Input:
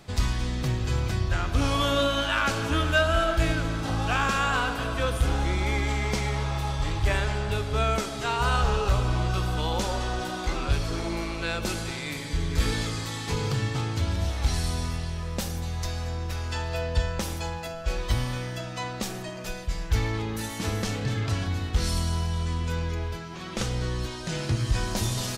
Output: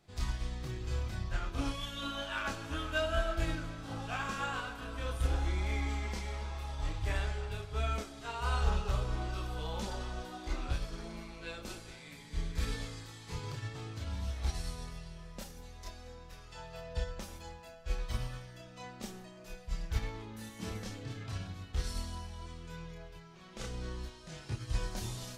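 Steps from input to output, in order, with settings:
gain on a spectral selection 0:01.72–0:02.03, 230–1,600 Hz −8 dB
multi-voice chorus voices 6, 0.21 Hz, delay 29 ms, depth 3.3 ms
expander for the loud parts 1.5 to 1, over −37 dBFS
level −5 dB

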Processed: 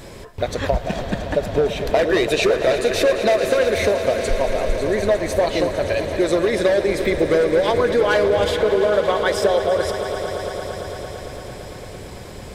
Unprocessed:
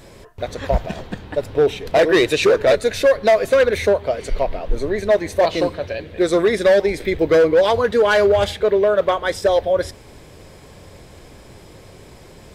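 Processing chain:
downward compressor, threshold −21 dBFS, peak gain reduction 10 dB
on a send: echo that builds up and dies away 113 ms, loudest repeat 5, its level −14 dB
on the sum: level +5 dB

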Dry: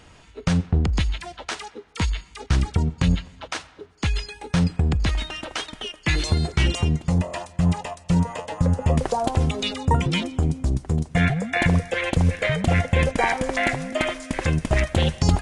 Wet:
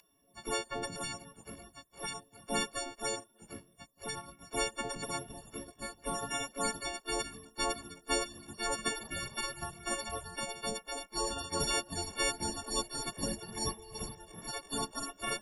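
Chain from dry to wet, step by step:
every partial snapped to a pitch grid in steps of 4 semitones
gate on every frequency bin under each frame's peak −20 dB weak
level +1.5 dB

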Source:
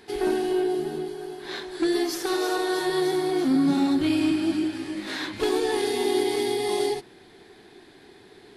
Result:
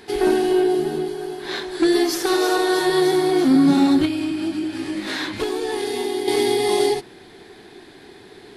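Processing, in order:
0:04.05–0:06.28: downward compressor, threshold −28 dBFS, peak gain reduction 9 dB
level +6.5 dB

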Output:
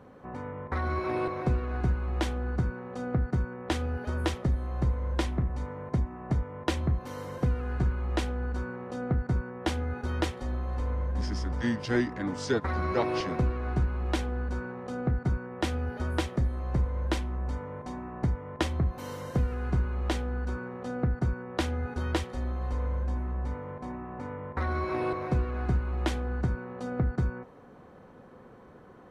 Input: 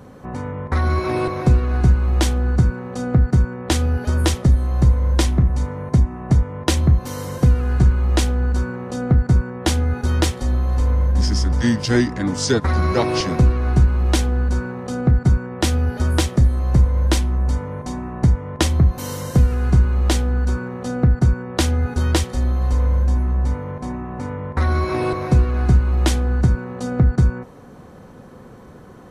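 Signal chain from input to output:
bass and treble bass −6 dB, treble −12 dB
level −7.5 dB

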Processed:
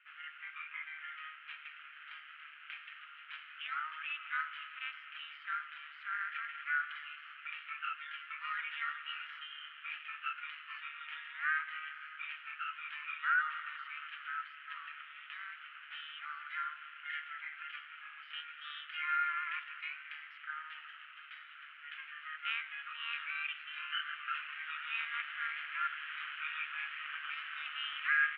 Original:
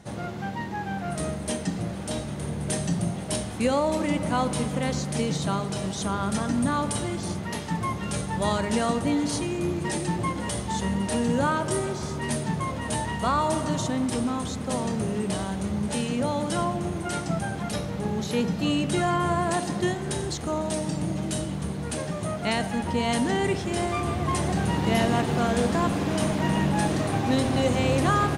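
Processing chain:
amplitude modulation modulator 150 Hz, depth 35%
formants moved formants +4 semitones
Chebyshev band-pass filter 1,300–3,100 Hz, order 4
level −1.5 dB

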